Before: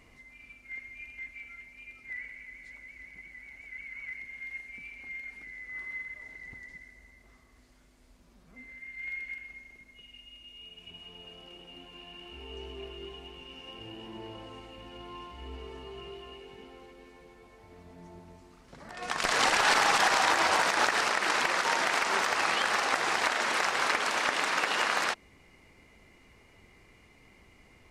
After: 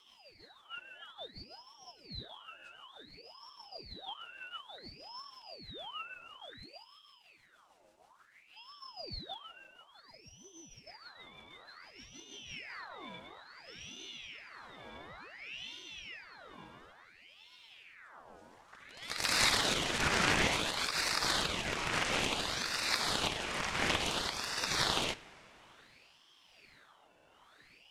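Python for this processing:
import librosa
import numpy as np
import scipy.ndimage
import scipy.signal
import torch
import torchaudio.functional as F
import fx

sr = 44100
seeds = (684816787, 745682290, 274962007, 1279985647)

y = fx.rotary_switch(x, sr, hz=6.3, then_hz=1.1, switch_at_s=12.27)
y = fx.rev_double_slope(y, sr, seeds[0], early_s=0.24, late_s=3.7, knee_db=-18, drr_db=14.0)
y = fx.ring_lfo(y, sr, carrier_hz=1900.0, swing_pct=70, hz=0.57)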